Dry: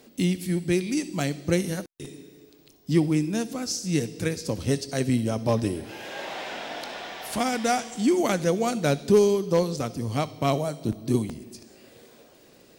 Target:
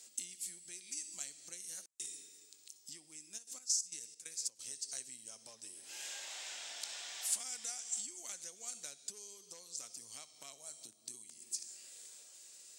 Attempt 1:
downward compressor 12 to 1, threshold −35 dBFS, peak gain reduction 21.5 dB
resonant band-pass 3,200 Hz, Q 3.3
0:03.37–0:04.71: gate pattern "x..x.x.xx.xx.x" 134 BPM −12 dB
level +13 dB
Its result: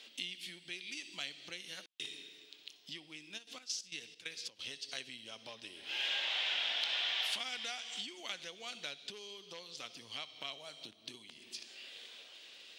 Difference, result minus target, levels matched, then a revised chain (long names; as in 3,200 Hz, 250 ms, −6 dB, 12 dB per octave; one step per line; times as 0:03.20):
8,000 Hz band −14.0 dB
downward compressor 12 to 1, threshold −35 dBFS, peak gain reduction 21.5 dB
resonant band-pass 7,700 Hz, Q 3.3
0:03.37–0:04.71: gate pattern "x..x.x.xx.xx.x" 134 BPM −12 dB
level +13 dB